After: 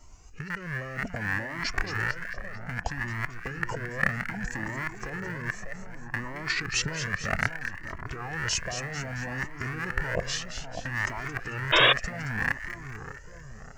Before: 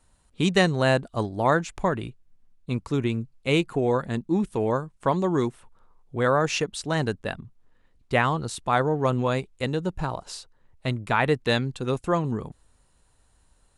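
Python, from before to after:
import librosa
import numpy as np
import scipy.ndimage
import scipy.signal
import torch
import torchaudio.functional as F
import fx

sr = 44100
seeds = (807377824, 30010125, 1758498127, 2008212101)

y = fx.rattle_buzz(x, sr, strikes_db=-38.0, level_db=-13.0)
y = fx.peak_eq(y, sr, hz=5000.0, db=-12.0, octaves=0.31)
y = fx.over_compress(y, sr, threshold_db=-33.0, ratio=-1.0)
y = fx.echo_split(y, sr, split_hz=1800.0, low_ms=599, high_ms=222, feedback_pct=52, wet_db=-8)
y = fx.formant_shift(y, sr, semitones=-6)
y = fx.spec_paint(y, sr, seeds[0], shape='noise', start_s=11.72, length_s=0.21, low_hz=280.0, high_hz=3800.0, level_db=-19.0)
y = fx.comb_cascade(y, sr, direction='rising', hz=0.63)
y = y * librosa.db_to_amplitude(4.5)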